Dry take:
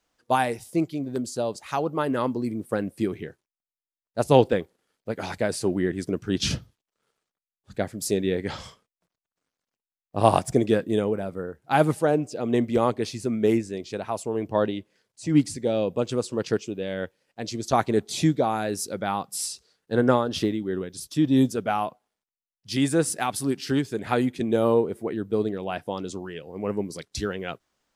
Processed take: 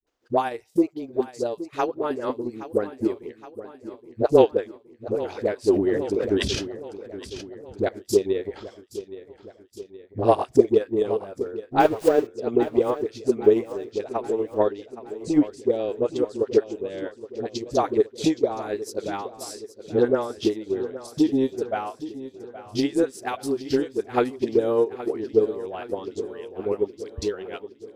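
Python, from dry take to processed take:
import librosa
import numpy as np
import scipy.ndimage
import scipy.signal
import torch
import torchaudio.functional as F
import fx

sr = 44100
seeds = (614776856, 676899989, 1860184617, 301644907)

p1 = fx.zero_step(x, sr, step_db=-25.0, at=(11.73, 12.2))
p2 = fx.dispersion(p1, sr, late='highs', ms=70.0, hz=450.0)
p3 = fx.transient(p2, sr, attack_db=10, sustain_db=-7)
p4 = fx.graphic_eq_15(p3, sr, hz=(160, 400, 10000), db=(-12, 9, -9))
p5 = p4 + fx.echo_feedback(p4, sr, ms=820, feedback_pct=57, wet_db=-14.5, dry=0)
p6 = fx.sustainer(p5, sr, db_per_s=51.0, at=(5.7, 7.89))
y = p6 * 10.0 ** (-6.5 / 20.0)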